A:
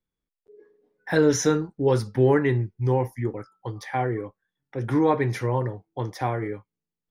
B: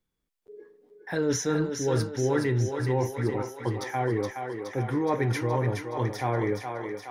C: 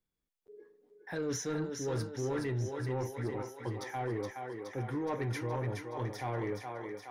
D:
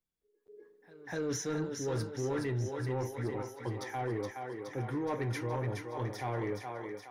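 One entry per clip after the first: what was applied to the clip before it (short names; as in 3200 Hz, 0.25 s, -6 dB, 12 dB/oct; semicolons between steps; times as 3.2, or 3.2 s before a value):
reverse; compressor, threshold -28 dBFS, peak gain reduction 13 dB; reverse; thinning echo 0.42 s, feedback 67%, high-pass 320 Hz, level -5 dB; gain +4.5 dB
soft clip -20 dBFS, distortion -17 dB; gain -7 dB
AGC gain up to 5.5 dB; reverse echo 0.246 s -21 dB; gain -5 dB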